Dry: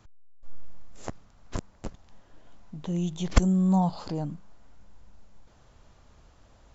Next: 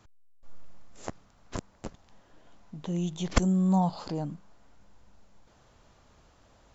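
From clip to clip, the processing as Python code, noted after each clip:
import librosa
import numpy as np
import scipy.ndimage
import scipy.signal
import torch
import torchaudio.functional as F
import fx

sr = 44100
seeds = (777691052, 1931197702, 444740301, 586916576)

y = fx.low_shelf(x, sr, hz=96.0, db=-8.0)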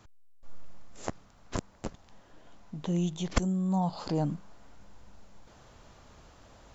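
y = fx.rider(x, sr, range_db=10, speed_s=0.5)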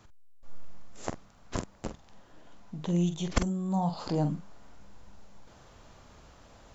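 y = fx.doubler(x, sr, ms=46.0, db=-9.0)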